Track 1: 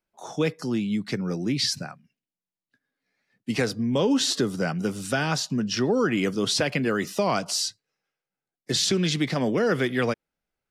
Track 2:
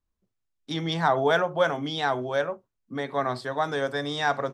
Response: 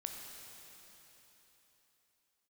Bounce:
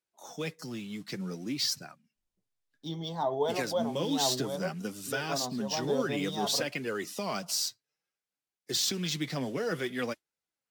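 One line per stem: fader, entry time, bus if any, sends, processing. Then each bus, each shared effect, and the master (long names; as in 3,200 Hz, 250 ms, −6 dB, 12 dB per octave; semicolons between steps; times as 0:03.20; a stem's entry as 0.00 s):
−6.0 dB, 0.00 s, no send, high-pass filter 100 Hz; high-shelf EQ 4,500 Hz +11.5 dB; noise that follows the level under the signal 25 dB
−3.5 dB, 2.15 s, no send, flat-topped bell 1,800 Hz −15.5 dB 1.3 octaves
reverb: not used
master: flanger 0.58 Hz, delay 1.9 ms, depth 5.9 ms, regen +39%; linearly interpolated sample-rate reduction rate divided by 2×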